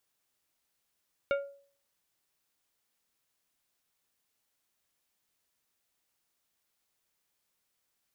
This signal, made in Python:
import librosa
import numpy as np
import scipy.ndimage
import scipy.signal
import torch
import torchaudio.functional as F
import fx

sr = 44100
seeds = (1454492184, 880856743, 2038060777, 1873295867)

y = fx.strike_glass(sr, length_s=0.89, level_db=-23.5, body='plate', hz=560.0, decay_s=0.48, tilt_db=5.5, modes=5)